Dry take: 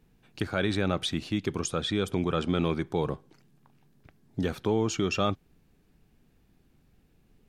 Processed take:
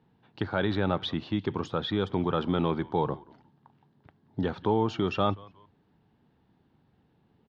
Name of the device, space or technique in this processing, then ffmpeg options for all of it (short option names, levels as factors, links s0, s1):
frequency-shifting delay pedal into a guitar cabinet: -filter_complex "[0:a]asplit=3[s0][s1][s2];[s1]adelay=179,afreqshift=-100,volume=0.0708[s3];[s2]adelay=358,afreqshift=-200,volume=0.0226[s4];[s0][s3][s4]amix=inputs=3:normalize=0,highpass=100,equalizer=f=100:t=q:w=4:g=4,equalizer=f=900:t=q:w=4:g=9,equalizer=f=2400:t=q:w=4:g=-8,lowpass=f=3900:w=0.5412,lowpass=f=3900:w=1.3066"